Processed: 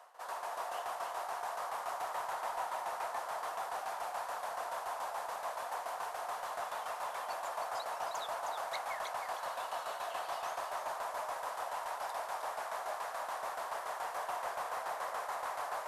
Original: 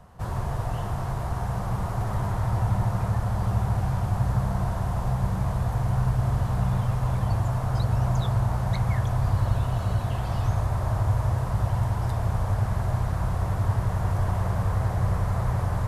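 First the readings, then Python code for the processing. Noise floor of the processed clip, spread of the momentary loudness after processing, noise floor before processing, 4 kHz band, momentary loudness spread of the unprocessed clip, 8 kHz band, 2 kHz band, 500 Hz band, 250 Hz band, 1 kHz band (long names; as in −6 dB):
−44 dBFS, 1 LU, −30 dBFS, −2.5 dB, 4 LU, can't be measured, −2.5 dB, −6.0 dB, below −30 dB, −3.0 dB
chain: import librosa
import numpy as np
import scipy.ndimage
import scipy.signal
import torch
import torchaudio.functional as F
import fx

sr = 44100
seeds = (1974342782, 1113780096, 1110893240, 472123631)

p1 = scipy.signal.sosfilt(scipy.signal.butter(4, 600.0, 'highpass', fs=sr, output='sos'), x)
p2 = fx.tremolo_shape(p1, sr, shape='saw_down', hz=7.0, depth_pct=70)
p3 = 10.0 ** (-31.5 / 20.0) * np.tanh(p2 / 10.0 ** (-31.5 / 20.0))
p4 = p3 + fx.echo_single(p3, sr, ms=313, db=-6.0, dry=0)
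y = F.gain(torch.from_numpy(p4), 1.0).numpy()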